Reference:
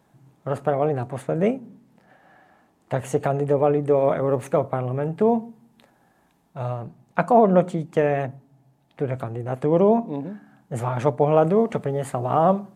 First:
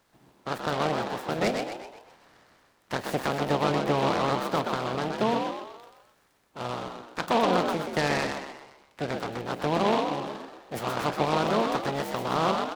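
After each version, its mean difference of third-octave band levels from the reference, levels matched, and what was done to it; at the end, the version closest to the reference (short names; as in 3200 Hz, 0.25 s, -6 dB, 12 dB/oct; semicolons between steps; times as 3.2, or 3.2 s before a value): 13.5 dB: spectral limiter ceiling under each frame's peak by 19 dB; limiter -8.5 dBFS, peak gain reduction 7 dB; on a send: frequency-shifting echo 0.127 s, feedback 46%, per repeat +62 Hz, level -5 dB; on the sum: noise-modulated delay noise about 2200 Hz, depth 0.052 ms; gain -5.5 dB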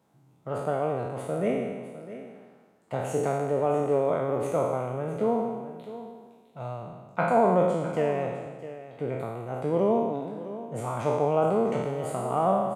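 6.0 dB: spectral trails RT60 1.36 s; HPF 97 Hz; notch 1700 Hz, Q 8.1; on a send: echo 0.656 s -14 dB; on the sum: gain -8 dB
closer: second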